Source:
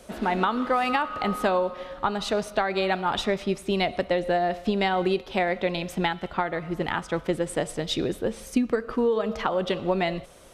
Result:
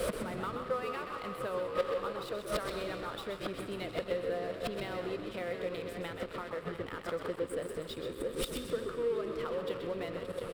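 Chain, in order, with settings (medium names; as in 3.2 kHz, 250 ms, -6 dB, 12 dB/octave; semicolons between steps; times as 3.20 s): backward echo that repeats 356 ms, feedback 55%, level -11.5 dB; recorder AGC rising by 50 dB/s; inverted gate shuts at -21 dBFS, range -29 dB; saturation -21 dBFS, distortion -23 dB; on a send at -13 dB: reverberation RT60 2.3 s, pre-delay 115 ms; on the sum: waveshaping leveller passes 5; graphic EQ with 31 bands 250 Hz -6 dB, 500 Hz +11 dB, 800 Hz -10 dB, 1.25 kHz +6 dB, 6.3 kHz -10 dB; frequency-shifting echo 129 ms, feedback 33%, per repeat -73 Hz, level -7 dB; trim -5.5 dB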